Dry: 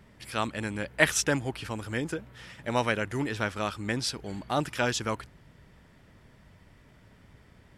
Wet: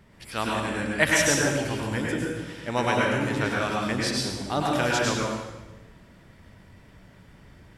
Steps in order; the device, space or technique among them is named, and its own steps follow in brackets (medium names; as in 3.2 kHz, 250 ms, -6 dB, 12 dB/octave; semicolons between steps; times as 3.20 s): bathroom (reverberation RT60 1.1 s, pre-delay 92 ms, DRR -3 dB)